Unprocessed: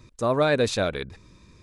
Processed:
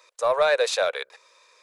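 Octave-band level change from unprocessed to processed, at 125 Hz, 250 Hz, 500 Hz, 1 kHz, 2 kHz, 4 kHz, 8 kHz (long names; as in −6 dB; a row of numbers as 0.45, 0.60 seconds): below −25 dB, below −20 dB, +1.5 dB, +2.5 dB, +2.5 dB, +2.5 dB, +3.0 dB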